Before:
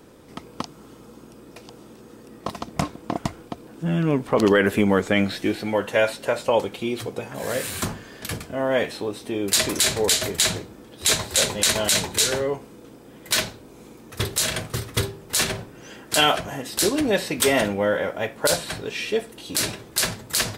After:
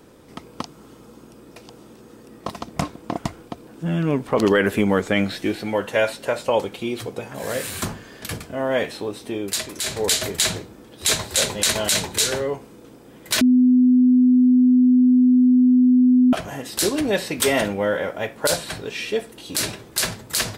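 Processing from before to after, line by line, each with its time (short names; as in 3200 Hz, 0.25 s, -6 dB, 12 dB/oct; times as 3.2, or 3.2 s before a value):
9.32–10.1 dip -10 dB, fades 0.35 s
13.41–16.33 bleep 251 Hz -11 dBFS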